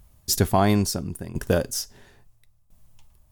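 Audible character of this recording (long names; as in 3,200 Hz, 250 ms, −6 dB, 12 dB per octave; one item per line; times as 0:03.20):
tremolo saw down 0.74 Hz, depth 85%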